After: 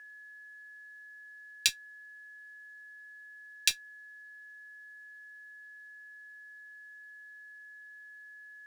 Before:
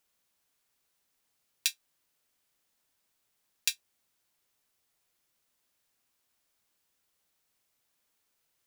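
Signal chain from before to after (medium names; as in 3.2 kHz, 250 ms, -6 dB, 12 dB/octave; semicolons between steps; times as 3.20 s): whistle 1.7 kHz -52 dBFS; frequency weighting A; in parallel at -8 dB: Schmitt trigger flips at -30 dBFS; on the sum: trim +3 dB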